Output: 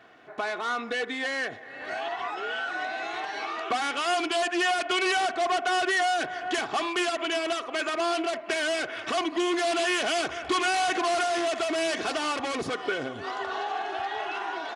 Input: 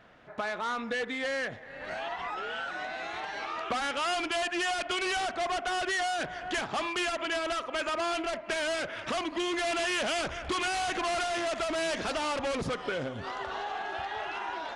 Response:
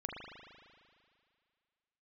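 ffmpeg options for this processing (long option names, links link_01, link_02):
-af "highpass=160,aecho=1:1:2.7:0.5,volume=2.5dB"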